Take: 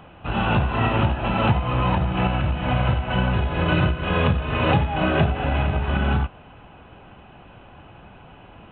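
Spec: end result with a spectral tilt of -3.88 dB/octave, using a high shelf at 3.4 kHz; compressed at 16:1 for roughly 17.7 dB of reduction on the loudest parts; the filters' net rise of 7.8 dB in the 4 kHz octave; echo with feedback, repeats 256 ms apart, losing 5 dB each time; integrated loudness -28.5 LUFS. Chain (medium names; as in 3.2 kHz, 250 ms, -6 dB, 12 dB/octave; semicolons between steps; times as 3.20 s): treble shelf 3.4 kHz +7 dB; peaking EQ 4 kHz +7.5 dB; compression 16:1, threshold -31 dBFS; feedback delay 256 ms, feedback 56%, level -5 dB; trim +6 dB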